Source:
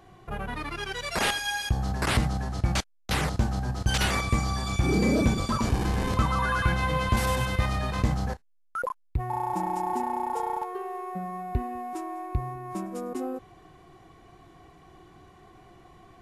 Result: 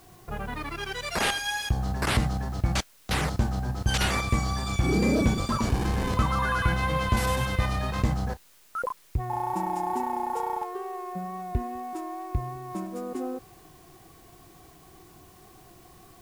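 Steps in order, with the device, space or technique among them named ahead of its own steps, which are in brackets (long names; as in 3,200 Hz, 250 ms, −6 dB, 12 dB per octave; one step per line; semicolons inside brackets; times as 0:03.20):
plain cassette with noise reduction switched in (one half of a high-frequency compander decoder only; tape wow and flutter 24 cents; white noise bed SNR 30 dB)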